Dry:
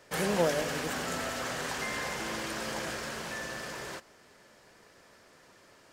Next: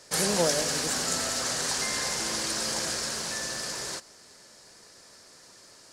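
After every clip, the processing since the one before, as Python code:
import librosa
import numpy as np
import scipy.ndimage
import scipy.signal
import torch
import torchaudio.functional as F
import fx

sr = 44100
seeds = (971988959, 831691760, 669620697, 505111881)

y = fx.band_shelf(x, sr, hz=6600.0, db=12.0, octaves=1.7)
y = F.gain(torch.from_numpy(y), 1.0).numpy()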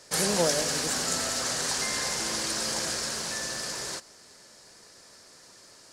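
y = x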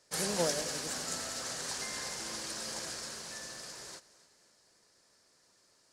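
y = fx.echo_feedback(x, sr, ms=265, feedback_pct=52, wet_db=-16)
y = fx.upward_expand(y, sr, threshold_db=-41.0, expansion=1.5)
y = F.gain(torch.from_numpy(y), -5.5).numpy()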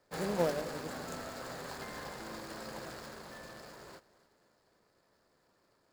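y = scipy.signal.medfilt(x, 15)
y = F.gain(torch.from_numpy(y), 2.0).numpy()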